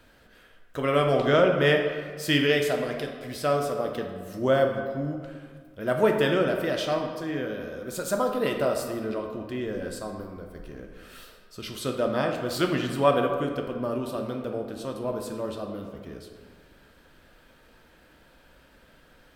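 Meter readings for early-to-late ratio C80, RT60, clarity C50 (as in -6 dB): 7.0 dB, 1.8 s, 5.0 dB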